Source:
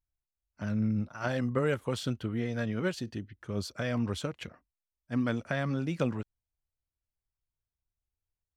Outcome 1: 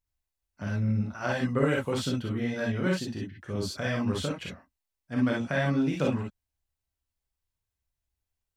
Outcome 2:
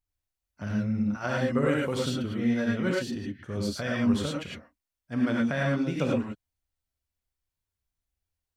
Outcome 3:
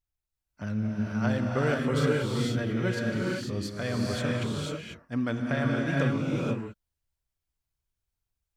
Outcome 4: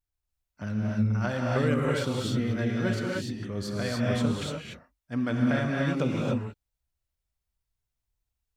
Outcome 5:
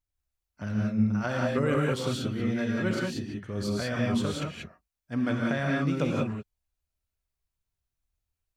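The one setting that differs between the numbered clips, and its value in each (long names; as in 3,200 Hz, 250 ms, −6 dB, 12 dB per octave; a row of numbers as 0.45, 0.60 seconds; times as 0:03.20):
reverb whose tail is shaped and stops, gate: 80, 130, 520, 320, 210 milliseconds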